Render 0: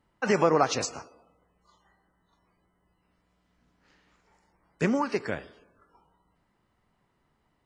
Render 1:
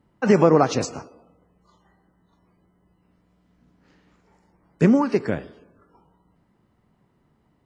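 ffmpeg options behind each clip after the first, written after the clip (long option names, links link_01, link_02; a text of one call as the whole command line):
ffmpeg -i in.wav -af "equalizer=frequency=180:width=0.33:gain=11" out.wav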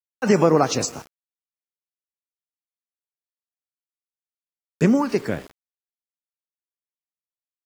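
ffmpeg -i in.wav -af "crystalizer=i=2:c=0,aeval=exprs='val(0)*gte(abs(val(0)),0.0119)':channel_layout=same,volume=-1dB" out.wav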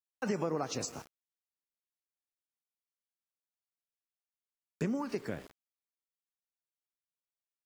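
ffmpeg -i in.wav -af "acompressor=threshold=-26dB:ratio=2.5,volume=-8dB" out.wav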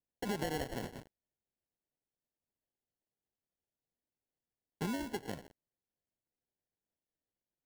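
ffmpeg -i in.wav -af "acrusher=samples=36:mix=1:aa=0.000001,volume=-3.5dB" out.wav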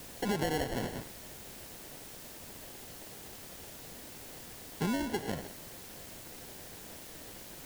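ffmpeg -i in.wav -af "aeval=exprs='val(0)+0.5*0.00944*sgn(val(0))':channel_layout=same,volume=3dB" out.wav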